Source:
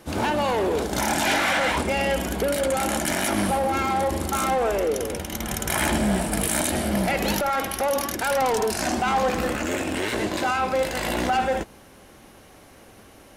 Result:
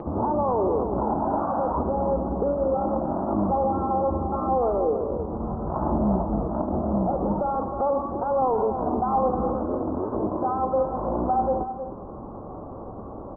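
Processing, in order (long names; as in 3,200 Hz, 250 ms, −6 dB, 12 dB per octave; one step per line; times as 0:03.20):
Butterworth low-pass 1,200 Hz 72 dB per octave
upward compression, threshold −25 dBFS
single-tap delay 312 ms −9.5 dB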